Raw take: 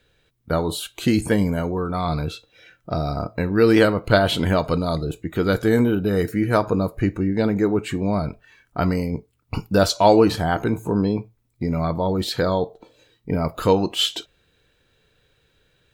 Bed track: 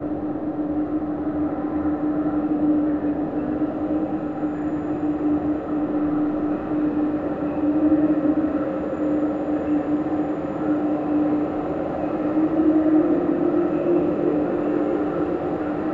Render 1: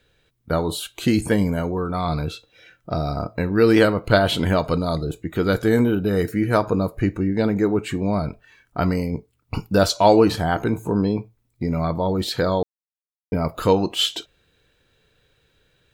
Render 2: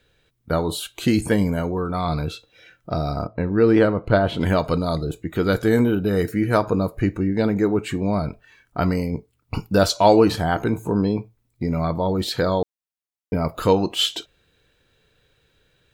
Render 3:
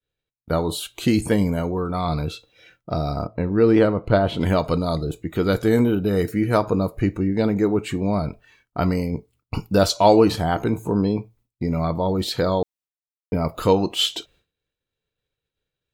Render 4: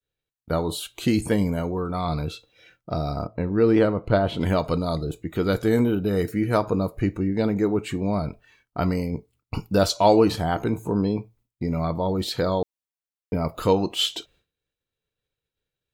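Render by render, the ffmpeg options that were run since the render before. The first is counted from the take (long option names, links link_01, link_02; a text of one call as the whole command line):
ffmpeg -i in.wav -filter_complex "[0:a]asettb=1/sr,asplit=3[link_01][link_02][link_03];[link_01]atrim=end=4.764[link_04];[link_02]atrim=start=4.76:end=5.21,asetpts=PTS-STARTPTS,afade=type=in:duration=0.004:curve=qsin,afade=type=out:start_time=0.446:duration=0.004:curve=qsin,bandreject=frequency=2700:width=5.4[link_05];[link_03]atrim=start=5.206[link_06];[link_04][link_05]acrossfade=duration=0.004:curve1=hsin:curve2=qsin[link_07];[link_07][link_06]acrossfade=duration=0.004:curve1=qsin:curve2=hsin,asplit=3[link_08][link_09][link_10];[link_08]atrim=end=12.63,asetpts=PTS-STARTPTS,afade=type=out:start_time=12.626:duration=0.004:curve=hsin[link_11];[link_09]atrim=start=12.63:end=13.32,asetpts=PTS-STARTPTS,volume=0[link_12];[link_10]atrim=start=13.32,asetpts=PTS-STARTPTS,afade=type=in:duration=0.004:curve=hsin[link_13];[link_11][link_12][link_13]concat=n=3:v=0:a=1" out.wav
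ffmpeg -i in.wav -filter_complex "[0:a]asplit=3[link_01][link_02][link_03];[link_01]afade=type=out:start_time=3.26:duration=0.02[link_04];[link_02]lowpass=frequency=1200:poles=1,afade=type=in:start_time=3.26:duration=0.02,afade=type=out:start_time=4.4:duration=0.02[link_05];[link_03]afade=type=in:start_time=4.4:duration=0.02[link_06];[link_04][link_05][link_06]amix=inputs=3:normalize=0" out.wav
ffmpeg -i in.wav -af "agate=range=-33dB:threshold=-49dB:ratio=3:detection=peak,equalizer=frequency=1600:width=4:gain=-4.5" out.wav
ffmpeg -i in.wav -af "volume=-2.5dB" out.wav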